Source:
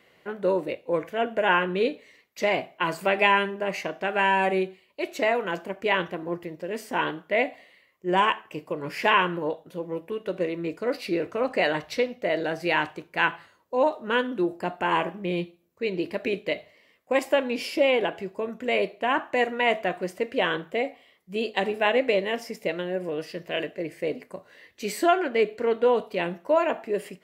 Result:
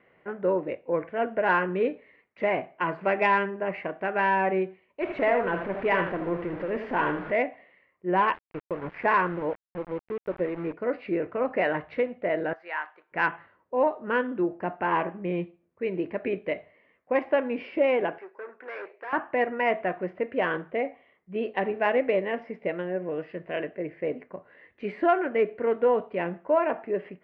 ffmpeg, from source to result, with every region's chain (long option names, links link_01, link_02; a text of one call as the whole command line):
ffmpeg -i in.wav -filter_complex "[0:a]asettb=1/sr,asplit=3[link_01][link_02][link_03];[link_01]atrim=end=5.014[link_04];[link_02]atrim=start=5.01:end=7.32,asetpts=PTS-STARTPTS,afade=type=in:duration=0.004:curve=qsin,afade=type=out:start_time=2.306:duration=0.004:curve=qsin,aeval=exprs='val(0)+0.5*0.0266*sgn(val(0))':channel_layout=same,aecho=1:1:80:0.422,atrim=end_sample=101871[link_05];[link_03]atrim=start=7.316[link_06];[link_04][link_05]acrossfade=duration=0.004:curve1=hsin:curve2=qsin[link_07];[link_07][link_06]acrossfade=duration=0.004:curve1=qsin:curve2=hsin,asettb=1/sr,asplit=3[link_08][link_09][link_10];[link_08]atrim=end=8.344[link_11];[link_09]atrim=start=8.34:end=10.73,asetpts=PTS-STARTPTS,afade=type=in:duration=0.004:curve=qsin,afade=type=out:start_time=2.386:duration=0.004:curve=qsin,equalizer=frequency=3000:width_type=o:width=0.32:gain=-8.5,aeval=exprs='val(0)*gte(abs(val(0)),0.0188)':channel_layout=same[link_12];[link_10]atrim=start=10.726[link_13];[link_11][link_12]acrossfade=duration=0.004:curve1=hsin:curve2=qsin[link_14];[link_14][link_13]acrossfade=duration=0.004:curve1=qsin:curve2=hsin,asettb=1/sr,asplit=3[link_15][link_16][link_17];[link_15]atrim=end=12.534[link_18];[link_16]atrim=start=12.53:end=13.12,asetpts=PTS-STARTPTS,afade=type=in:duration=0.004:curve=qsin,afade=type=out:start_time=0.586:duration=0.004:curve=qsin,equalizer=frequency=2600:width=1.4:gain=-8.5,acompressor=mode=upward:threshold=-44dB:ratio=2.5:attack=3.2:release=140:knee=2.83:detection=peak,highpass=1200[link_19];[link_17]atrim=start=13.116[link_20];[link_18][link_19]acrossfade=duration=0.004:curve1=hsin:curve2=qsin[link_21];[link_21][link_20]acrossfade=duration=0.004:curve1=qsin:curve2=hsin,asettb=1/sr,asplit=3[link_22][link_23][link_24];[link_22]atrim=end=18.184[link_25];[link_23]atrim=start=18.18:end=19.13,asetpts=PTS-STARTPTS,afade=type=in:duration=0.004:curve=qsin,afade=type=out:start_time=0.946:duration=0.004:curve=qsin,aeval=exprs='(tanh(35.5*val(0)+0.5)-tanh(0.5))/35.5':channel_layout=same,highpass=frequency=400:width=0.5412,highpass=frequency=400:width=1.3066,equalizer=frequency=650:width_type=q:width=4:gain=-9,equalizer=frequency=1600:width_type=q:width=4:gain=6,equalizer=frequency=3200:width_type=q:width=4:gain=-5,equalizer=frequency=5400:width_type=q:width=4:gain=10,lowpass=frequency=6600:width=0.5412,lowpass=frequency=6600:width=1.3066[link_26];[link_24]atrim=start=19.126[link_27];[link_25][link_26]acrossfade=duration=0.004:curve1=hsin:curve2=qsin[link_28];[link_28][link_27]acrossfade=duration=0.004:curve1=qsin:curve2=hsin,lowpass=frequency=2200:width=0.5412,lowpass=frequency=2200:width=1.3066,acontrast=26,volume=-6dB" out.wav